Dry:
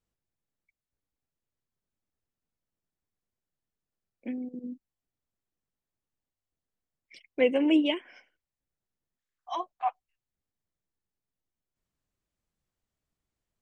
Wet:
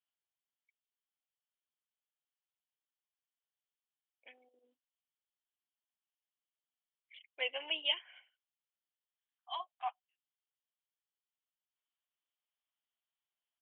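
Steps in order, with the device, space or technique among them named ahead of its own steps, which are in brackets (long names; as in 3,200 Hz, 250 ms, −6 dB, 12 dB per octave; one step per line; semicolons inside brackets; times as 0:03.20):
musical greeting card (downsampling to 8,000 Hz; high-pass filter 710 Hz 24 dB per octave; parametric band 3,100 Hz +11.5 dB 0.4 octaves)
level −7.5 dB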